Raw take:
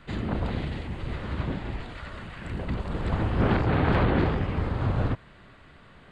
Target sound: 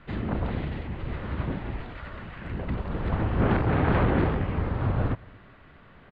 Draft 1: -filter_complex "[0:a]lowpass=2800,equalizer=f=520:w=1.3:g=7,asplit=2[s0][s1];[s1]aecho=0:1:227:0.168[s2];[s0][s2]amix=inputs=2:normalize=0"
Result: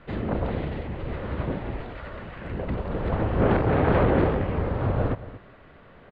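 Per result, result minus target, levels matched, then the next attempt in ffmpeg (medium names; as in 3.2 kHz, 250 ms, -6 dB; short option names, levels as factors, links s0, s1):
echo-to-direct +9 dB; 500 Hz band +4.0 dB
-filter_complex "[0:a]lowpass=2800,equalizer=f=520:w=1.3:g=7,asplit=2[s0][s1];[s1]aecho=0:1:227:0.0596[s2];[s0][s2]amix=inputs=2:normalize=0"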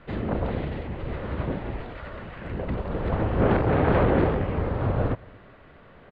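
500 Hz band +4.0 dB
-filter_complex "[0:a]lowpass=2800,asplit=2[s0][s1];[s1]aecho=0:1:227:0.0596[s2];[s0][s2]amix=inputs=2:normalize=0"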